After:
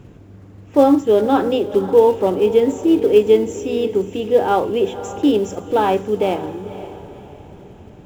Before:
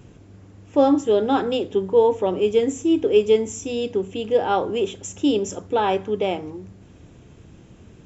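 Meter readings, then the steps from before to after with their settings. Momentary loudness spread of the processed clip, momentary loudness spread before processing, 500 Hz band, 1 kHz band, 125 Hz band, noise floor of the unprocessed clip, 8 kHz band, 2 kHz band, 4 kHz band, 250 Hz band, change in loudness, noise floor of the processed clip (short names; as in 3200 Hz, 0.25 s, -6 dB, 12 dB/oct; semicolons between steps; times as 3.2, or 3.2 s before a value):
11 LU, 9 LU, +4.5 dB, +4.0 dB, +4.5 dB, -48 dBFS, n/a, +2.5 dB, 0.0 dB, +4.5 dB, +4.5 dB, -42 dBFS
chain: block floating point 5-bit; high shelf 3700 Hz -11.5 dB; on a send: diffused feedback echo 0.53 s, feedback 41%, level -13.5 dB; on the sum: gain +4.5 dB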